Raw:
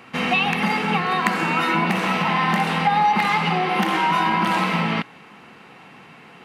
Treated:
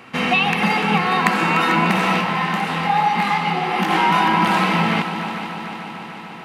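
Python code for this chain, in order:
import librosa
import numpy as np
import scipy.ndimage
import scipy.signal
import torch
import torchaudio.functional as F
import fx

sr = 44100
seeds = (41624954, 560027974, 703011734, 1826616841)

y = fx.echo_heads(x, sr, ms=148, heads='second and third', feedback_pct=67, wet_db=-11.5)
y = fx.detune_double(y, sr, cents=fx.line((2.2, 33.0), (3.89, 44.0)), at=(2.2, 3.89), fade=0.02)
y = F.gain(torch.from_numpy(y), 2.5).numpy()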